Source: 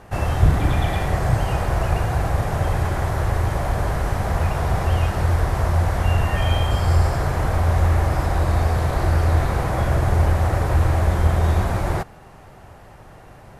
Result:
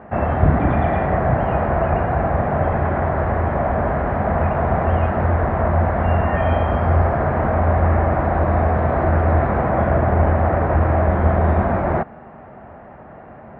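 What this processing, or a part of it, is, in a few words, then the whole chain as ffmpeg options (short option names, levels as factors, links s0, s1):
bass cabinet: -af "highpass=76,equalizer=f=110:t=q:w=4:g=-8,equalizer=f=230:t=q:w=4:g=8,equalizer=f=650:t=q:w=4:g=6,lowpass=f=2000:w=0.5412,lowpass=f=2000:w=1.3066,volume=1.58"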